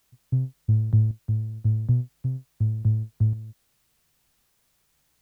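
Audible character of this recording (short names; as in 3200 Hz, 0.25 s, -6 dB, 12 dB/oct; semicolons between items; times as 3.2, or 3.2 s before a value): tremolo saw up 0.9 Hz, depth 55%; a quantiser's noise floor 12-bit, dither triangular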